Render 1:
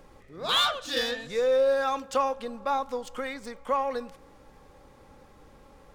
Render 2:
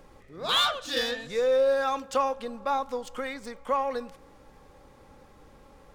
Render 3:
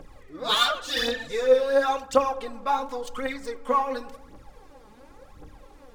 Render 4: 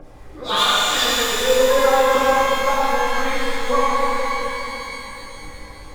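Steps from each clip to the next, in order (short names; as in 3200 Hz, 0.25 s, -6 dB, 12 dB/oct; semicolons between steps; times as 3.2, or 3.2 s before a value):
nothing audible
phaser 0.92 Hz, delay 4.9 ms, feedback 68%; FDN reverb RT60 0.85 s, low-frequency decay 1.4×, high-frequency decay 0.3×, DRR 14.5 dB
harmonic tremolo 7.5 Hz, crossover 2300 Hz; shimmer reverb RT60 3.4 s, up +12 st, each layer -8 dB, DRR -8.5 dB; gain +2 dB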